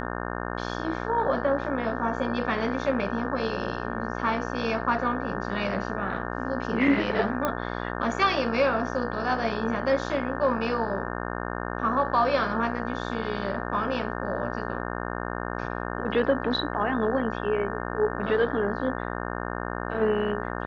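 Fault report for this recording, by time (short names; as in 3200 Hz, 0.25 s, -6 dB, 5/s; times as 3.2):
buzz 60 Hz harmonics 30 -32 dBFS
7.45 pop -12 dBFS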